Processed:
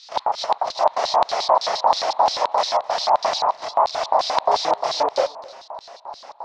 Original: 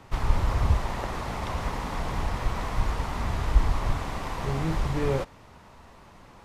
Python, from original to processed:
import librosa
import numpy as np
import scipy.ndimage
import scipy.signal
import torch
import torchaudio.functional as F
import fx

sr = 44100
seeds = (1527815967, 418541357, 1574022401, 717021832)

y = fx.over_compress(x, sr, threshold_db=-25.0, ratio=-0.5)
y = fx.filter_lfo_lowpass(y, sr, shape='square', hz=3.1, low_hz=940.0, high_hz=5400.0, q=4.4)
y = fx.chorus_voices(y, sr, voices=2, hz=0.77, base_ms=28, depth_ms=4.3, mix_pct=50)
y = fx.filter_lfo_highpass(y, sr, shape='square', hz=5.7, low_hz=640.0, high_hz=4000.0, q=5.6)
y = y + 10.0 ** (-21.5 / 20.0) * np.pad(y, (int(262 * sr / 1000.0), 0))[:len(y)]
y = y * 10.0 ** (7.0 / 20.0)